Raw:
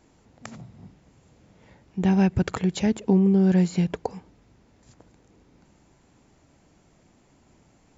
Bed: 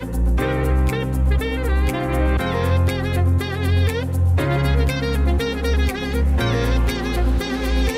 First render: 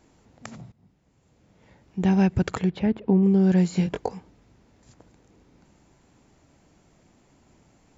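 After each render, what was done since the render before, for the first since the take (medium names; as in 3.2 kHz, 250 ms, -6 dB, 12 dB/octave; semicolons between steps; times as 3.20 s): 0.72–2.04 s: fade in, from -17.5 dB; 2.69–3.23 s: distance through air 350 m; 3.74–4.14 s: doubling 21 ms -5 dB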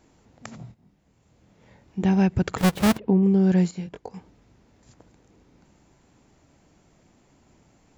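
0.58–2.03 s: doubling 25 ms -5 dB; 2.58–2.98 s: square wave that keeps the level; 3.71–4.14 s: gain -10 dB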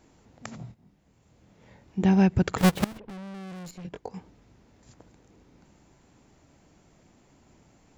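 2.84–3.85 s: valve stage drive 39 dB, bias 0.75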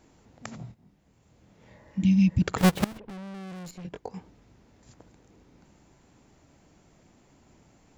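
1.75–2.40 s: spectral replace 340–2100 Hz before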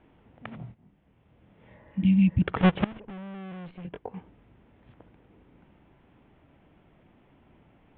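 steep low-pass 3.4 kHz 72 dB/octave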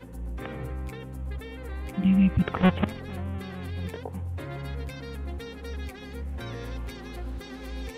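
add bed -17 dB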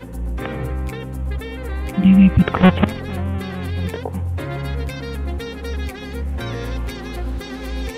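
trim +10 dB; peak limiter -3 dBFS, peak gain reduction 1.5 dB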